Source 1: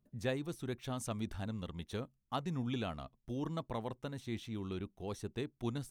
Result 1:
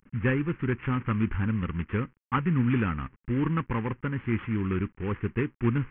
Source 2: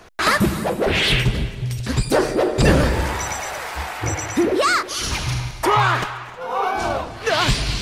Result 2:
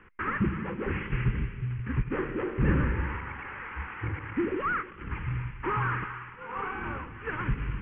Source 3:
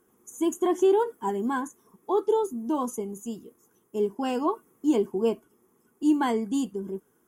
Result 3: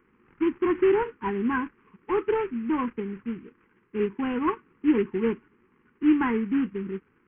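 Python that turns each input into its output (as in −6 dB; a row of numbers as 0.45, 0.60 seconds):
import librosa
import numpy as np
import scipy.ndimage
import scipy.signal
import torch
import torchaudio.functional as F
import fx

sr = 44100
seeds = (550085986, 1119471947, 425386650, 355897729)

y = fx.cvsd(x, sr, bps=16000)
y = fx.fixed_phaser(y, sr, hz=1600.0, stages=4)
y = y * 10.0 ** (-12 / 20.0) / np.max(np.abs(y))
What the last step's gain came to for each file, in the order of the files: +15.0, −6.0, +5.0 decibels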